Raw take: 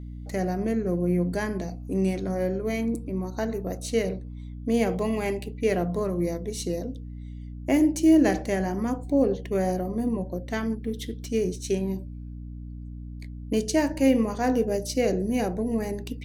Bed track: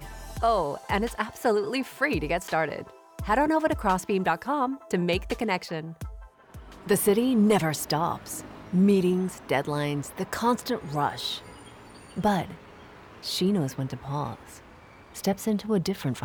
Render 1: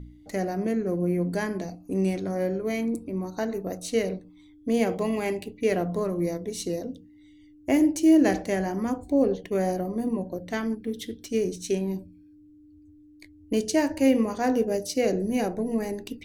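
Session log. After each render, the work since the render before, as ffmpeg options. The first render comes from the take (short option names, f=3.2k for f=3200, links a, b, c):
-af "bandreject=f=60:t=h:w=4,bandreject=f=120:t=h:w=4,bandreject=f=180:t=h:w=4,bandreject=f=240:t=h:w=4"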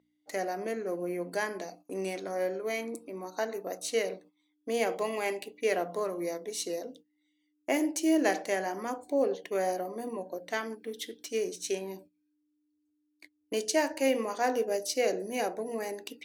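-af "highpass=500,agate=range=-14dB:threshold=-52dB:ratio=16:detection=peak"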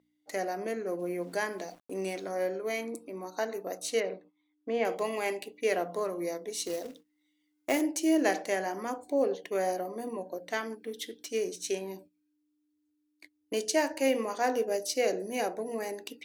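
-filter_complex "[0:a]asplit=3[a][b][c];[a]afade=t=out:st=0.98:d=0.02[d];[b]aeval=exprs='val(0)*gte(abs(val(0)),0.00178)':c=same,afade=t=in:st=0.98:d=0.02,afade=t=out:st=2.25:d=0.02[e];[c]afade=t=in:st=2.25:d=0.02[f];[d][e][f]amix=inputs=3:normalize=0,asettb=1/sr,asplit=3[g][h][i];[g]atrim=end=4.004[j];[h]atrim=start=4:end=4.85,asetpts=PTS-STARTPTS,afade=t=in:d=0.004:c=qsin,afade=t=out:st=0.846:d=0.004:c=qsin,lowpass=2.6k[k];[i]atrim=start=4.846[l];[j][k]acrossfade=d=0.004:c1=hsin:c2=qsin[m];[m][l]acrossfade=d=0.004:c1=qsin:c2=hsin,asettb=1/sr,asplit=3[n][o][p];[n]atrim=end=6.654[q];[o]atrim=start=6.65:end=7.81,asetpts=PTS-STARTPTS,afade=t=in:d=0.004:c=qsin,afade=t=out:st=1.156:d=0.004:c=qsin,acrusher=bits=3:mode=log:mix=0:aa=0.000001[r];[p]atrim=start=7.806[s];[q][r]acrossfade=d=0.004:c1=hsin:c2=qsin[t];[t][s]acrossfade=d=0.004:c1=qsin:c2=hsin"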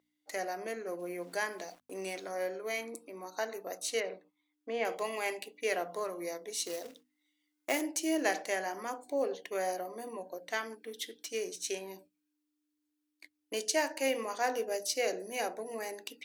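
-af "lowshelf=f=470:g=-10,bandreject=f=50:t=h:w=6,bandreject=f=100:t=h:w=6,bandreject=f=150:t=h:w=6,bandreject=f=200:t=h:w=6,bandreject=f=250:t=h:w=6"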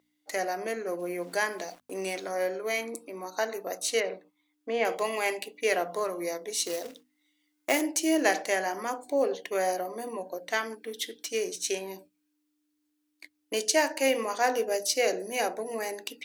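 -af "volume=6dB"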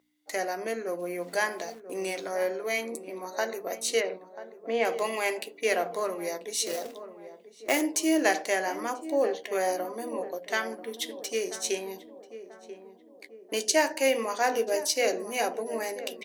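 -filter_complex "[0:a]asplit=2[a][b];[b]adelay=13,volume=-13dB[c];[a][c]amix=inputs=2:normalize=0,asplit=2[d][e];[e]adelay=988,lowpass=f=1k:p=1,volume=-12dB,asplit=2[f][g];[g]adelay=988,lowpass=f=1k:p=1,volume=0.54,asplit=2[h][i];[i]adelay=988,lowpass=f=1k:p=1,volume=0.54,asplit=2[j][k];[k]adelay=988,lowpass=f=1k:p=1,volume=0.54,asplit=2[l][m];[m]adelay=988,lowpass=f=1k:p=1,volume=0.54,asplit=2[n][o];[o]adelay=988,lowpass=f=1k:p=1,volume=0.54[p];[d][f][h][j][l][n][p]amix=inputs=7:normalize=0"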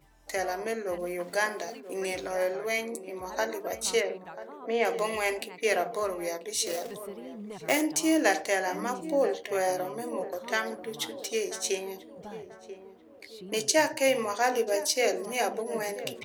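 -filter_complex "[1:a]volume=-21dB[a];[0:a][a]amix=inputs=2:normalize=0"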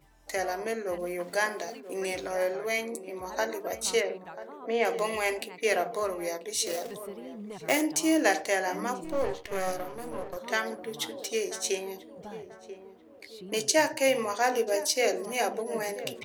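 -filter_complex "[0:a]asettb=1/sr,asplit=3[a][b][c];[a]atrim=end=9.044[d];[b]atrim=start=9.04:end=10.37,asetpts=PTS-STARTPTS,afade=t=in:d=0.004:c=qsin,afade=t=out:st=1.326:d=0.004:c=qsin,aeval=exprs='if(lt(val(0),0),0.251*val(0),val(0))':c=same[e];[c]atrim=start=10.366[f];[d][e]acrossfade=d=0.004:c1=hsin:c2=qsin[g];[g][f]acrossfade=d=0.004:c1=qsin:c2=hsin"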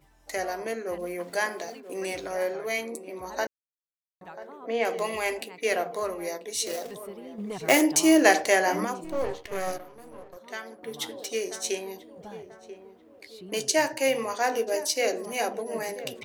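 -filter_complex "[0:a]asettb=1/sr,asplit=3[a][b][c];[a]atrim=end=7.384[d];[b]atrim=start=7.38:end=8.85,asetpts=PTS-STARTPTS,afade=t=in:d=0.004:c=qsin,afade=t=out:st=1.466:d=0.004:c=qsin,acontrast=54[e];[c]atrim=start=8.846[f];[d][e]acrossfade=d=0.004:c1=hsin:c2=qsin[g];[g][f]acrossfade=d=0.004:c1=qsin:c2=hsin,asplit=5[h][i][j][k][l];[h]atrim=end=3.47,asetpts=PTS-STARTPTS,afade=t=out:st=3.466:d=0.004:c=hsin[m];[i]atrim=start=3.47:end=4.21,asetpts=PTS-STARTPTS,volume=0[n];[j]atrim=start=4.21:end=9.782,asetpts=PTS-STARTPTS,afade=t=in:d=0.004:c=hsin[o];[k]atrim=start=9.778:end=10.832,asetpts=PTS-STARTPTS,volume=-8.5dB[p];[l]atrim=start=10.828[q];[m][n][o]concat=n=3:v=0:a=1[r];[r][p]acrossfade=d=0.004:c1=hsin:c2=hsin[s];[s][q]acrossfade=d=0.004:c1=hsin:c2=hsin"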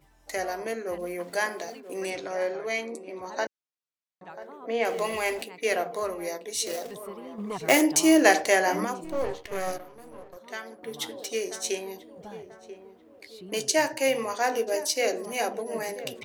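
-filter_complex "[0:a]asettb=1/sr,asplit=3[a][b][c];[a]atrim=end=2.104[d];[b]atrim=start=2.1:end=4.3,asetpts=PTS-STARTPTS,afade=t=in:d=0.004:c=qsin,afade=t=out:st=2.196:d=0.004:c=qsin,highpass=130,lowpass=6.9k[e];[c]atrim=start=4.296[f];[d][e]acrossfade=d=0.004:c1=hsin:c2=qsin[g];[g][f]acrossfade=d=0.004:c1=qsin:c2=hsin,asettb=1/sr,asplit=3[h][i][j];[h]atrim=end=4.894[k];[i]atrim=start=4.89:end=5.42,asetpts=PTS-STARTPTS,afade=t=in:d=0.004:c=qsin,afade=t=out:st=0.526:d=0.004:c=qsin,aeval=exprs='val(0)+0.5*0.00891*sgn(val(0))':c=same[l];[j]atrim=start=5.416[m];[k][l]acrossfade=d=0.004:c1=hsin:c2=qsin[n];[n][m]acrossfade=d=0.004:c1=qsin:c2=hsin,asettb=1/sr,asplit=3[o][p][q];[o]atrim=end=7.064[r];[p]atrim=start=7.06:end=7.57,asetpts=PTS-STARTPTS,afade=t=in:d=0.004:c=qsin,afade=t=out:st=0.506:d=0.004:c=qsin,equalizer=f=1.1k:w=2.6:g=13[s];[q]atrim=start=7.566[t];[r][s]acrossfade=d=0.004:c1=hsin:c2=qsin[u];[u][t]acrossfade=d=0.004:c1=qsin:c2=hsin"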